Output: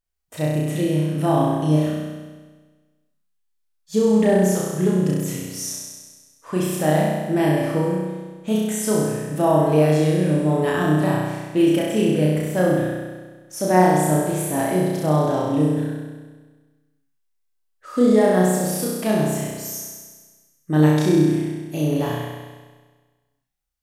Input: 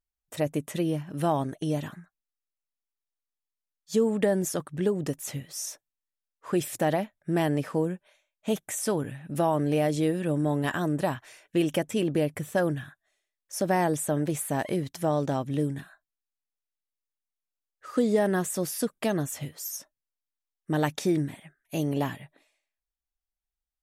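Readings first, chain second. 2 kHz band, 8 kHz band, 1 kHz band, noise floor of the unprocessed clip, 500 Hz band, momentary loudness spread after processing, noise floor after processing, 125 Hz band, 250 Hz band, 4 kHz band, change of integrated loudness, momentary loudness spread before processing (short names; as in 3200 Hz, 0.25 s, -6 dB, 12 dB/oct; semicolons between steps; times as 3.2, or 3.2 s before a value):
+6.0 dB, +6.0 dB, +8.0 dB, under -85 dBFS, +8.0 dB, 13 LU, -69 dBFS, +10.0 dB, +9.0 dB, +6.0 dB, +8.5 dB, 10 LU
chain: harmonic-percussive split harmonic +5 dB; flutter echo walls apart 5.6 m, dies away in 1.4 s; gain -1 dB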